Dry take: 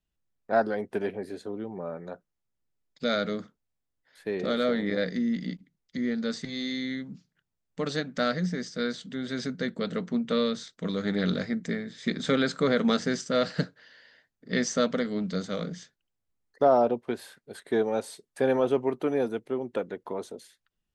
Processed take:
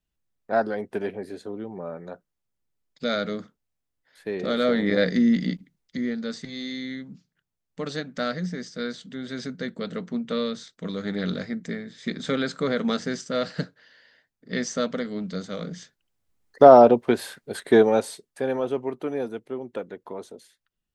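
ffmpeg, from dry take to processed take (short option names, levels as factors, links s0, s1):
-af "volume=9.44,afade=t=in:st=4.42:d=0.85:silence=0.421697,afade=t=out:st=5.27:d=0.93:silence=0.334965,afade=t=in:st=15.59:d=1.04:silence=0.281838,afade=t=out:st=17.74:d=0.67:silence=0.251189"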